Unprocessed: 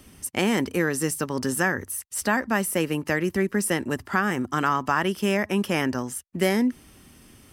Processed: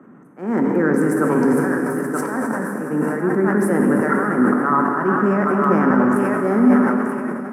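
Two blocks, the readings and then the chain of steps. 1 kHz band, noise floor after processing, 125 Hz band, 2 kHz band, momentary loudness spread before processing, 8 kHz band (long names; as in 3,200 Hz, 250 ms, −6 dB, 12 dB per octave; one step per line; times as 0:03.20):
+7.0 dB, −41 dBFS, +5.5 dB, +2.0 dB, 4 LU, −8.0 dB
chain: adaptive Wiener filter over 9 samples
on a send: feedback echo with a high-pass in the loop 929 ms, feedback 33%, high-pass 720 Hz, level −9 dB
on the sum: volume swells 578 ms
parametric band 260 Hz +8 dB 2.6 octaves
brickwall limiter −18.5 dBFS, peak gain reduction 11 dB
high shelf with overshoot 2,100 Hz −13.5 dB, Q 3
dense smooth reverb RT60 4.4 s, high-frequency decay 0.85×, DRR 0.5 dB
automatic gain control gain up to 7.5 dB
high-pass filter 160 Hz 24 dB per octave
level that may fall only so fast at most 33 dB per second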